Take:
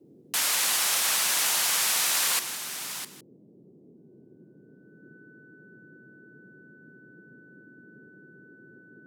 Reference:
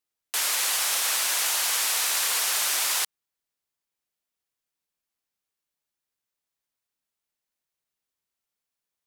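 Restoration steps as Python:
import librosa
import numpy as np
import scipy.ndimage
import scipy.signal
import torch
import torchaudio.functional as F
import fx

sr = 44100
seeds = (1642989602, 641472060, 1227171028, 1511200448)

y = fx.notch(x, sr, hz=1500.0, q=30.0)
y = fx.noise_reduce(y, sr, print_start_s=3.23, print_end_s=3.73, reduce_db=30.0)
y = fx.fix_echo_inverse(y, sr, delay_ms=159, level_db=-13.5)
y = fx.gain(y, sr, db=fx.steps((0.0, 0.0), (2.39, 10.5)))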